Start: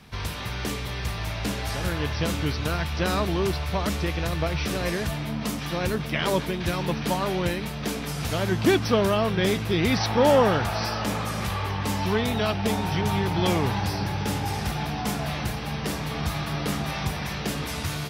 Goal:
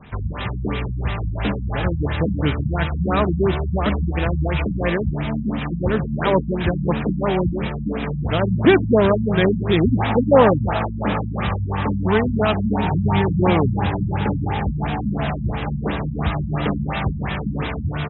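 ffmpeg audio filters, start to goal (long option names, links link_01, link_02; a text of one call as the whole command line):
ffmpeg -i in.wav -af "aecho=1:1:167:0.2,afftfilt=real='re*lt(b*sr/1024,240*pow(4000/240,0.5+0.5*sin(2*PI*2.9*pts/sr)))':imag='im*lt(b*sr/1024,240*pow(4000/240,0.5+0.5*sin(2*PI*2.9*pts/sr)))':win_size=1024:overlap=0.75,volume=7dB" out.wav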